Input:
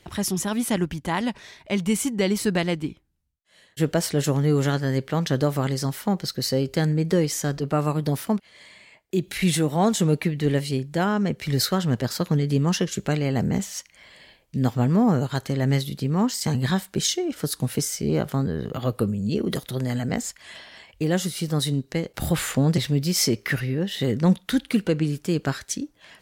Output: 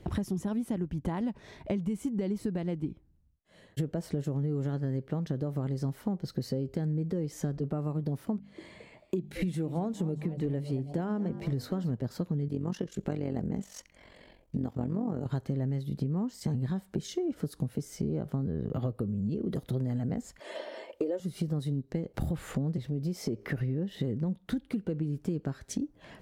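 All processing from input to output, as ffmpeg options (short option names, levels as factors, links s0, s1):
-filter_complex "[0:a]asettb=1/sr,asplit=3[s0][s1][s2];[s0]atrim=end=8.364[s3];[s1]atrim=start=8.36:end=11.91,asetpts=PTS-STARTPTS,afade=t=in:d=0.004:c=qsin,afade=t=out:st=3.546:d=0.004:c=qsin,bandreject=f=50:t=h:w=6,bandreject=f=100:t=h:w=6,bandreject=f=150:t=h:w=6,bandreject=f=200:t=h:w=6,bandreject=f=250:t=h:w=6,asplit=5[s4][s5][s6][s7][s8];[s5]adelay=220,afreqshift=140,volume=0.133[s9];[s6]adelay=440,afreqshift=280,volume=0.0617[s10];[s7]adelay=660,afreqshift=420,volume=0.0282[s11];[s8]adelay=880,afreqshift=560,volume=0.013[s12];[s4][s9][s10][s11][s12]amix=inputs=5:normalize=0,atrim=end_sample=156555[s13];[s2]atrim=start=11.906[s14];[s3][s13]acrossfade=d=0.004:c1=hsin:c2=qsin[s15];[s15][s14]acrossfade=d=0.004:c1=qsin:c2=hsin,asettb=1/sr,asplit=3[s16][s17][s18];[s16]atrim=end=12.484[s19];[s17]atrim=start=12.48:end=15.26,asetpts=PTS-STARTPTS,afade=t=in:d=0.004:c=qsin,afade=t=out:st=2.776:d=0.004:c=qsin,equalizer=f=120:w=1:g=-7.5,tremolo=f=45:d=0.71[s20];[s18]atrim=start=15.256[s21];[s19][s20]acrossfade=d=0.004:c1=hsin:c2=qsin[s22];[s22][s21]acrossfade=d=0.004:c1=qsin:c2=hsin,asettb=1/sr,asplit=3[s23][s24][s25];[s23]atrim=end=20.404[s26];[s24]atrim=start=20.4:end=21.2,asetpts=PTS-STARTPTS,afade=t=in:d=0.004:c=qsin,afade=t=out:st=0.796:d=0.004:c=qsin,highpass=f=470:t=q:w=5.2,aecho=1:1:3.3:0.6,atrim=end_sample=35280[s27];[s25]atrim=start=21.196[s28];[s26][s27]acrossfade=d=0.004:c1=hsin:c2=qsin[s29];[s29][s28]acrossfade=d=0.004:c1=qsin:c2=hsin,asettb=1/sr,asplit=3[s30][s31][s32];[s30]atrim=end=22.854[s33];[s31]atrim=start=22.85:end=23.61,asetpts=PTS-STARTPTS,afade=t=in:d=0.004:c=qsin,afade=t=out:st=0.756:d=0.004:c=qsin,equalizer=f=530:w=0.58:g=5.5,acompressor=threshold=0.0282:ratio=2:attack=3.2:release=140:knee=1:detection=peak[s34];[s32]atrim=start=23.606[s35];[s33][s34]acrossfade=d=0.004:c1=hsin:c2=qsin[s36];[s36][s35]acrossfade=d=0.004:c1=qsin:c2=hsin,tiltshelf=f=970:g=9.5,alimiter=limit=0.335:level=0:latency=1:release=336,acompressor=threshold=0.0355:ratio=8"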